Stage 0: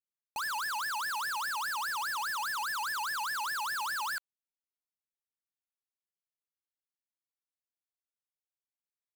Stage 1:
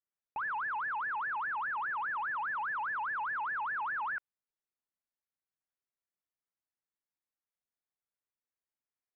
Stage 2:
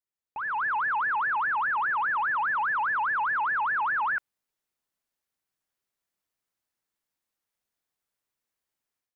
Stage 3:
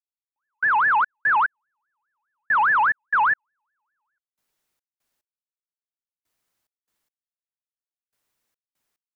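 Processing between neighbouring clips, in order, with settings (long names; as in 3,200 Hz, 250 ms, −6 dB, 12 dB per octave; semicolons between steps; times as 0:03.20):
Butterworth low-pass 2,200 Hz 36 dB per octave
automatic gain control gain up to 10.5 dB; level −2 dB
gate pattern "...xx.x.." 72 BPM −60 dB; level +8.5 dB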